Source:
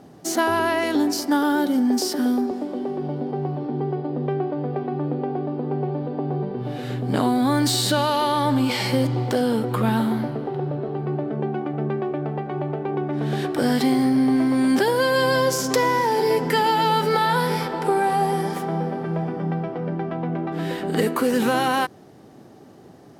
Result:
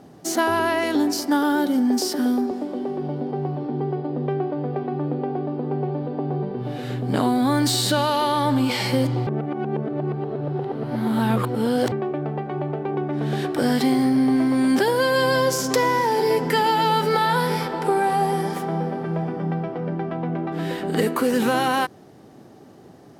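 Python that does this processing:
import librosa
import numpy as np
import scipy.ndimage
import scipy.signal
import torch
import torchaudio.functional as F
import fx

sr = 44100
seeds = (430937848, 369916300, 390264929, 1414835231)

y = fx.edit(x, sr, fx.reverse_span(start_s=9.27, length_s=2.65), tone=tone)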